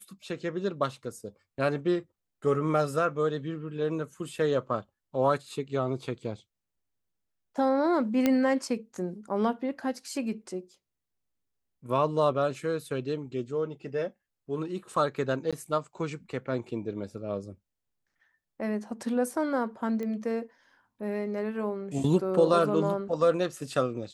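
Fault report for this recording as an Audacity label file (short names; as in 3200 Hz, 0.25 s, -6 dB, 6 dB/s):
8.260000	8.260000	pop -11 dBFS
15.510000	15.530000	gap 16 ms
20.030000	20.030000	pop -24 dBFS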